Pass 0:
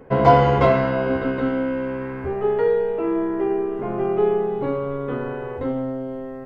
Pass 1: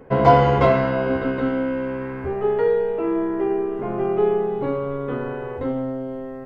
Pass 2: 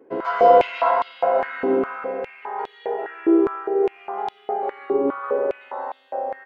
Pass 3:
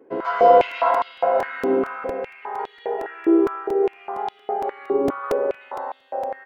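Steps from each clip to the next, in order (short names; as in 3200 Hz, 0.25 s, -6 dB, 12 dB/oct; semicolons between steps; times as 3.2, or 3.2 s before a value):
nothing audible
doubler 48 ms -12 dB; reverb RT60 4.0 s, pre-delay 90 ms, DRR -7.5 dB; stepped high-pass 4.9 Hz 330–3500 Hz; gain -11.5 dB
crackling interface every 0.23 s, samples 128, repeat, from 0.71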